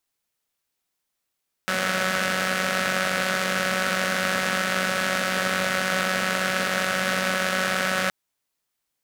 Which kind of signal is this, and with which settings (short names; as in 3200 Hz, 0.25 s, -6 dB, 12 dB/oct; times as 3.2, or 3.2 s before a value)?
four-cylinder engine model, steady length 6.42 s, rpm 5600, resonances 220/570/1400 Hz